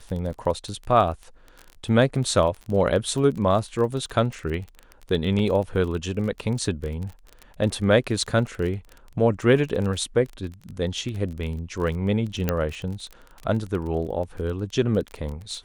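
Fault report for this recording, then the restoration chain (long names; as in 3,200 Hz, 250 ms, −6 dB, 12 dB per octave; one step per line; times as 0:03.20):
surface crackle 24 per second −30 dBFS
0:05.39: drop-out 3.5 ms
0:12.49: click −8 dBFS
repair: click removal
repair the gap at 0:05.39, 3.5 ms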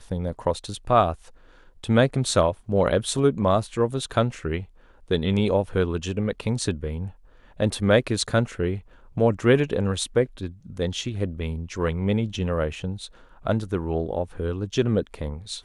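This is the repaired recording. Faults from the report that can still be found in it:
none of them is left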